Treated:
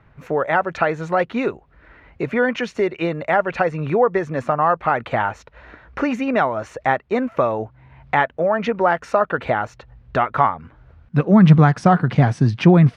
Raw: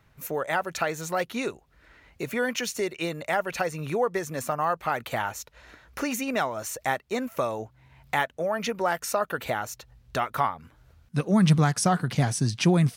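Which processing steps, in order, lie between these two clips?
LPF 2000 Hz 12 dB/oct; gain +9 dB

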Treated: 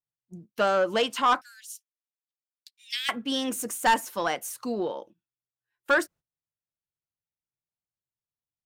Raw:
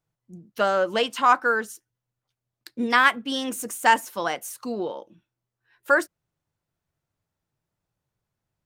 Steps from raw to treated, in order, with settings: gate -46 dBFS, range -21 dB; 1.41–3.09 steep high-pass 2600 Hz 36 dB/oct; soft clip -14.5 dBFS, distortion -12 dB

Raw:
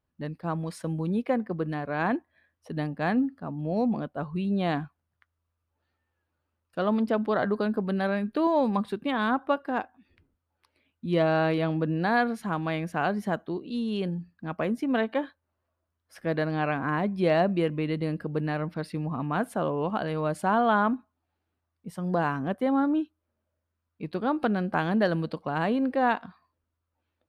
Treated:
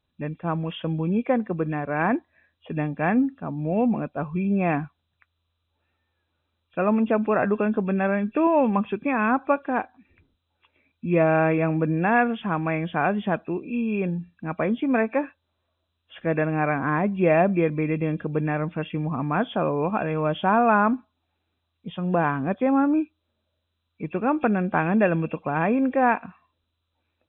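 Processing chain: nonlinear frequency compression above 2300 Hz 4:1; gain +4 dB

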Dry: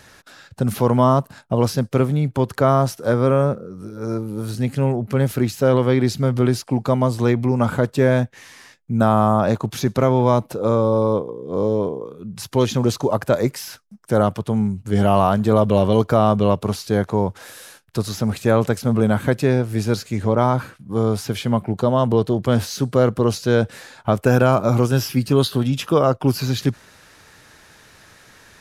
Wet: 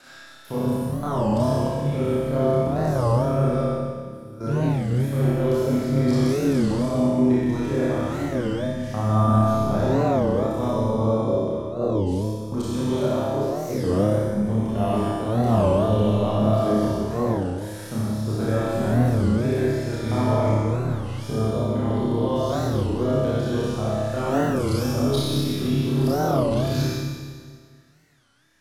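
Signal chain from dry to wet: slices in reverse order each 0.149 s, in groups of 3; dynamic EQ 1500 Hz, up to -5 dB, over -31 dBFS, Q 1.1; level quantiser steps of 23 dB; flutter echo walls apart 4.9 m, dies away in 0.62 s; Schroeder reverb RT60 1.8 s, combs from 28 ms, DRR -7 dB; record warp 33 1/3 rpm, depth 250 cents; gain -7 dB

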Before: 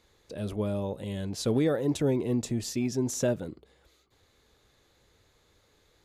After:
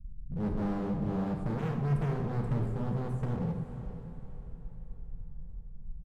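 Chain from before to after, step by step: rattling part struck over -33 dBFS, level -25 dBFS; Chebyshev band-stop 180–8600 Hz, order 3; low-pass opened by the level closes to 1300 Hz, open at -29.5 dBFS; tilt -4.5 dB/oct; comb 5.4 ms, depth 56%; de-hum 58.6 Hz, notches 3; in parallel at +0.5 dB: compressor, threshold -47 dBFS, peak gain reduction 28 dB; on the sum: envelope phaser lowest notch 440 Hz, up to 1300 Hz, full sweep at -21 dBFS; overloaded stage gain 33 dB; flange 1.8 Hz, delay 2.2 ms, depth 6.2 ms, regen -62%; diffused feedback echo 0.489 s, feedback 44%, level -11 dB; on a send at -4 dB: reverb RT60 1.0 s, pre-delay 28 ms; on the sum: gain +6 dB

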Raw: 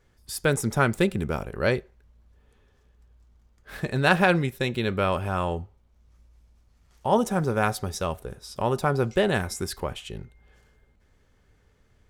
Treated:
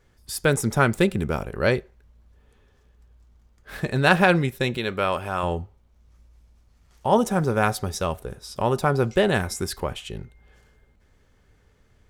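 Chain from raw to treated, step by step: 4.77–5.43 low shelf 280 Hz -9.5 dB; gain +2.5 dB

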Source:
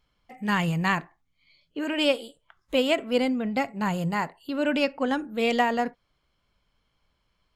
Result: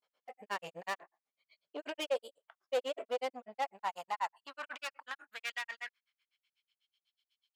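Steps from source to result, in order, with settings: grains 91 ms, grains 8.1/s, spray 25 ms, pitch spread up and down by 0 st; tube stage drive 30 dB, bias 0.45; high-pass sweep 550 Hz -> 3200 Hz, 3.06–7; gain -2.5 dB

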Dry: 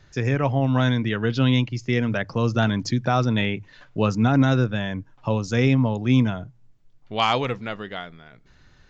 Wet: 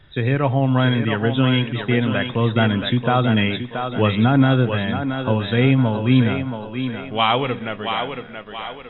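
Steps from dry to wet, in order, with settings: nonlinear frequency compression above 3200 Hz 4:1; thinning echo 0.677 s, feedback 44%, high-pass 240 Hz, level -6 dB; on a send at -19 dB: reverb RT60 0.85 s, pre-delay 41 ms; on the sum: gain +3 dB

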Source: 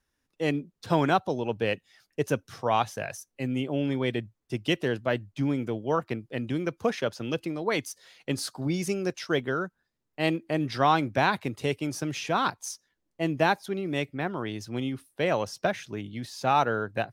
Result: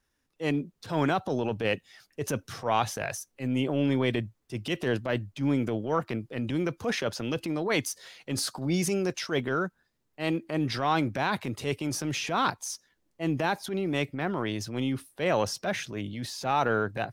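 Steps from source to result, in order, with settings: in parallel at -3 dB: vocal rider 2 s; on the sum: limiter -10.5 dBFS, peak gain reduction 6.5 dB; transient shaper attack -8 dB, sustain +4 dB; gain -3 dB

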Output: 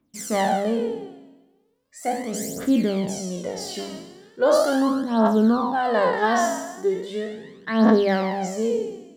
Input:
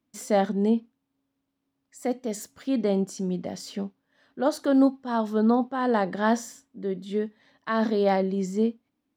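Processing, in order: spectral trails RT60 1.19 s; phaser 0.38 Hz, delay 3.2 ms, feedback 68%; notches 50/100/150/200/250 Hz

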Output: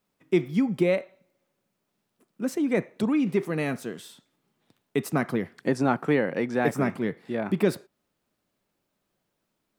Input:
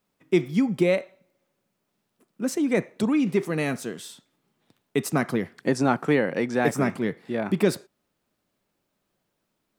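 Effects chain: dynamic EQ 6900 Hz, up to -6 dB, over -48 dBFS, Q 0.71; gain -1.5 dB

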